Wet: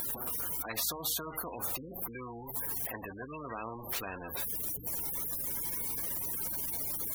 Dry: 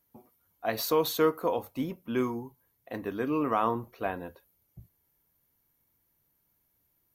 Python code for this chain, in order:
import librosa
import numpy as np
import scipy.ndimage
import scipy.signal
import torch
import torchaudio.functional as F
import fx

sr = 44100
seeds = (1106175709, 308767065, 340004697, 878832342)

y = x + 0.5 * 10.0 ** (-39.5 / 20.0) * np.sign(x)
y = fx.high_shelf(y, sr, hz=9100.0, db=9.0)
y = fx.spec_gate(y, sr, threshold_db=-20, keep='strong')
y = fx.add_hum(y, sr, base_hz=60, snr_db=32)
y = fx.spectral_comp(y, sr, ratio=4.0)
y = F.gain(torch.from_numpy(y), -6.5).numpy()